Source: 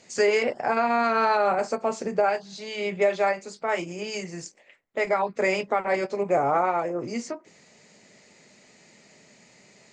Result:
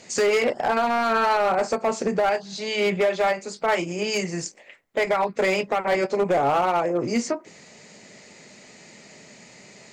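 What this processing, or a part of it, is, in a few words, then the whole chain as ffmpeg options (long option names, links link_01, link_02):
limiter into clipper: -af "alimiter=limit=-18dB:level=0:latency=1:release=374,asoftclip=type=hard:threshold=-23.5dB,volume=7.5dB"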